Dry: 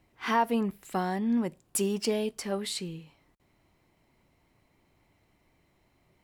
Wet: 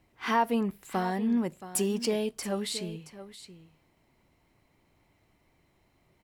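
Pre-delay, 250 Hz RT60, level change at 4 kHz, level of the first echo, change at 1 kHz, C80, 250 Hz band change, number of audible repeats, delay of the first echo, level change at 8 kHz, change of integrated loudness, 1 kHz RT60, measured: none, none, 0.0 dB, -14.0 dB, 0.0 dB, none, +0.5 dB, 1, 0.674 s, 0.0 dB, 0.0 dB, none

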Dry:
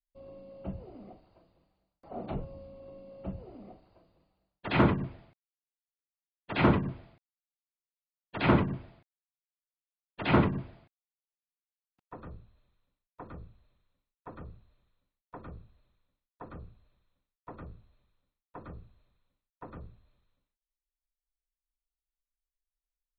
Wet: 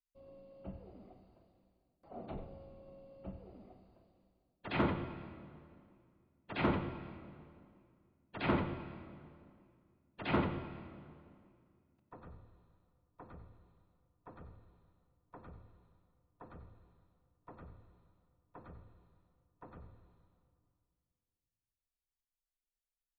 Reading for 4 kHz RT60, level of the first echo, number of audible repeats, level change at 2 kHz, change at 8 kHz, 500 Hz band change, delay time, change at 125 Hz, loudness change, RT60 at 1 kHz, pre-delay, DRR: 1.9 s, -13.0 dB, 1, -7.5 dB, n/a, -7.5 dB, 91 ms, -10.0 dB, -9.5 dB, 2.3 s, 35 ms, 8.0 dB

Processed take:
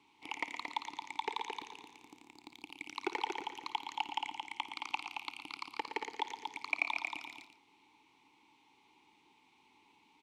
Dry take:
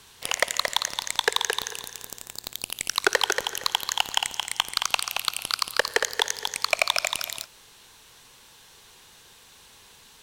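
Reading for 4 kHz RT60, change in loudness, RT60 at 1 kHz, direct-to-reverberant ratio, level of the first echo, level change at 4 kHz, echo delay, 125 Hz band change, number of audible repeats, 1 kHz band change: none, -14.5 dB, none, none, -15.0 dB, -19.0 dB, 54 ms, under -15 dB, 2, -8.0 dB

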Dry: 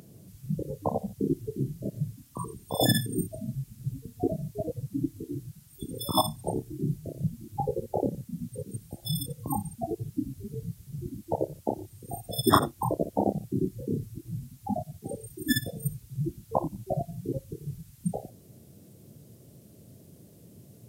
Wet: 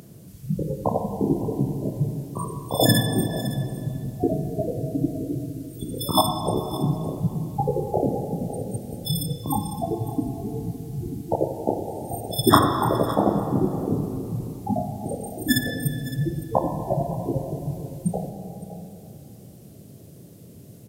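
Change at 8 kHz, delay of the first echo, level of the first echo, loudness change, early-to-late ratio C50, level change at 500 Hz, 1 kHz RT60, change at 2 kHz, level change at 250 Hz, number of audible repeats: +5.0 dB, 0.561 s, -16.0 dB, +6.5 dB, 5.0 dB, +6.5 dB, 2.8 s, +6.5 dB, +6.5 dB, 1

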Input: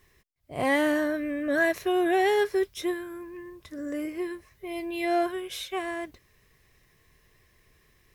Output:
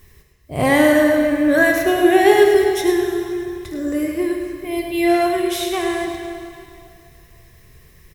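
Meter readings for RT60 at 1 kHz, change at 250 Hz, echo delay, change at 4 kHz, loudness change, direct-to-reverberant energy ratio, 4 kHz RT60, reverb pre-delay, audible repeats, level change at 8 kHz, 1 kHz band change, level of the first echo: 2.5 s, +12.0 dB, 0.105 s, +10.0 dB, +10.5 dB, 1.5 dB, 2.3 s, 6 ms, 1, +13.5 dB, +9.5 dB, -8.5 dB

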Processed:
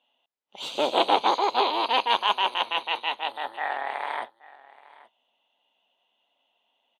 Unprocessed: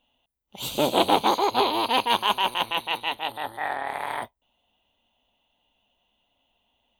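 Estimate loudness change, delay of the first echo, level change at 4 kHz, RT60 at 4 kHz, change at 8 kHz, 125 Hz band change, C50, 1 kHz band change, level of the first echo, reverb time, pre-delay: -0.5 dB, 0.826 s, -0.5 dB, none, n/a, under -15 dB, none, 0.0 dB, -21.0 dB, none, none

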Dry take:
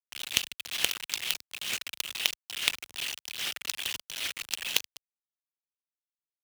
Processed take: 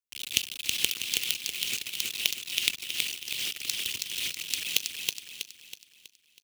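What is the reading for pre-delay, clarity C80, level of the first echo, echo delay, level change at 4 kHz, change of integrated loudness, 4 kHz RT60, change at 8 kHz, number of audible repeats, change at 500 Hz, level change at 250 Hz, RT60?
none, none, -3.5 dB, 0.323 s, +2.5 dB, +2.0 dB, none, +3.5 dB, 5, -2.5 dB, +2.0 dB, none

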